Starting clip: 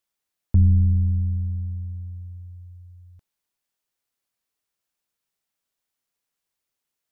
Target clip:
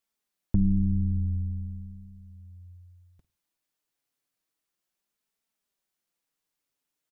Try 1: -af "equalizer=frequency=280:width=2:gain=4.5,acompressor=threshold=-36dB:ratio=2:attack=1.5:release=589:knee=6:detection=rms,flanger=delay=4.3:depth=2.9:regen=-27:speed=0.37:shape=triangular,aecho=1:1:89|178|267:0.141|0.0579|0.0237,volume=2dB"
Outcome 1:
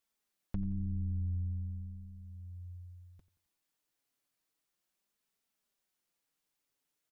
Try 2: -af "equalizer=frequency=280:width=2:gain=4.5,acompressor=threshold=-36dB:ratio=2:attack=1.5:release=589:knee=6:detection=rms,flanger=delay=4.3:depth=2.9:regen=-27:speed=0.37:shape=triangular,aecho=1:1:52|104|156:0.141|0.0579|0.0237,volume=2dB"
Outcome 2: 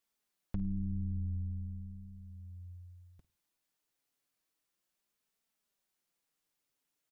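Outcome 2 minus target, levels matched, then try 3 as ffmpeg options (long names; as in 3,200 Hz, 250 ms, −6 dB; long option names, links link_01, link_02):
downward compressor: peak gain reduction +13.5 dB
-af "equalizer=frequency=280:width=2:gain=4.5,flanger=delay=4.3:depth=2.9:regen=-27:speed=0.37:shape=triangular,aecho=1:1:52|104|156:0.141|0.0579|0.0237,volume=2dB"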